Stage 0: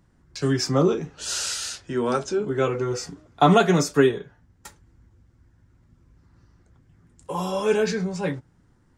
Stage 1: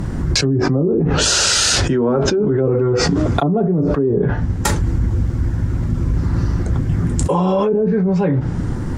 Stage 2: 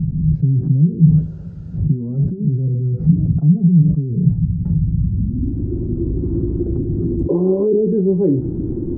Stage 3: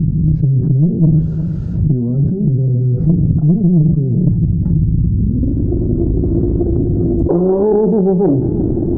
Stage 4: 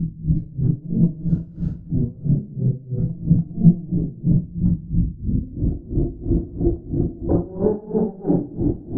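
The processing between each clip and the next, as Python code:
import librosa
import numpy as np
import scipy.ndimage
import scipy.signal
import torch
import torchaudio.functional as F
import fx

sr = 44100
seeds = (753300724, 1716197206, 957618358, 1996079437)

y1 = fx.tilt_shelf(x, sr, db=4.5, hz=730.0)
y1 = fx.env_lowpass_down(y1, sr, base_hz=480.0, full_db=-15.0)
y1 = fx.env_flatten(y1, sr, amount_pct=100)
y1 = y1 * librosa.db_to_amplitude(-5.0)
y2 = fx.peak_eq(y1, sr, hz=8800.0, db=14.0, octaves=1.4)
y2 = fx.filter_sweep_lowpass(y2, sr, from_hz=160.0, to_hz=350.0, start_s=5.06, end_s=5.69, q=5.6)
y2 = y2 * librosa.db_to_amplitude(-4.5)
y3 = fx.tube_stage(y2, sr, drive_db=7.0, bias=0.65)
y3 = fx.echo_feedback(y3, sr, ms=357, feedback_pct=52, wet_db=-19.0)
y3 = fx.env_flatten(y3, sr, amount_pct=50)
y3 = y3 * librosa.db_to_amplitude(2.5)
y4 = fx.room_shoebox(y3, sr, seeds[0], volume_m3=650.0, walls='mixed', distance_m=1.9)
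y4 = y4 * 10.0 ** (-21 * (0.5 - 0.5 * np.cos(2.0 * np.pi * 3.0 * np.arange(len(y4)) / sr)) / 20.0)
y4 = y4 * librosa.db_to_amplitude(-8.5)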